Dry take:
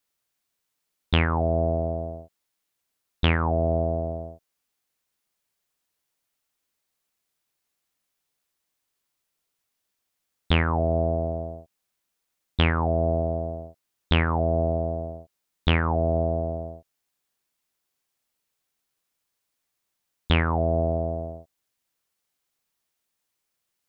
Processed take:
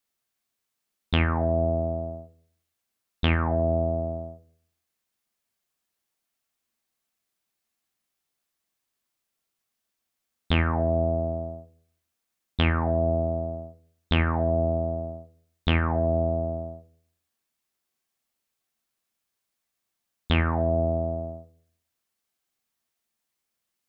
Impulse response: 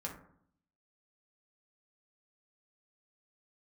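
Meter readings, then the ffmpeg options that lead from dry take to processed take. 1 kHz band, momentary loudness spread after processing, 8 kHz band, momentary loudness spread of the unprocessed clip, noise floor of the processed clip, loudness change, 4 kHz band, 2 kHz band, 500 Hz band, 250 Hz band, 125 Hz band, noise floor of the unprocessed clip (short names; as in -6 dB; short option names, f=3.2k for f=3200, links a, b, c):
-2.0 dB, 14 LU, n/a, 15 LU, -82 dBFS, -1.0 dB, -2.5 dB, -1.5 dB, -0.5 dB, -0.5 dB, -1.0 dB, -80 dBFS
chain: -filter_complex "[0:a]asplit=2[a][b];[1:a]atrim=start_sample=2205,asetrate=57330,aresample=44100[c];[b][c]afir=irnorm=-1:irlink=0,volume=-2dB[d];[a][d]amix=inputs=2:normalize=0,volume=-5dB"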